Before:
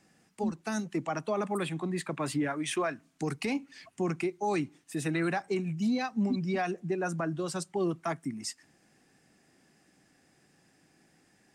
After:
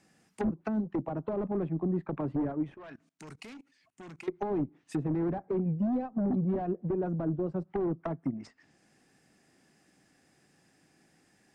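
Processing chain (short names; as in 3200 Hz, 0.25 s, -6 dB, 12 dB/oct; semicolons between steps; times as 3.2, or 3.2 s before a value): added harmonics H 3 -28 dB, 5 -7 dB, 7 -10 dB, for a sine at -21.5 dBFS; 2.76–4.28 level quantiser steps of 23 dB; treble ducked by the level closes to 510 Hz, closed at -27.5 dBFS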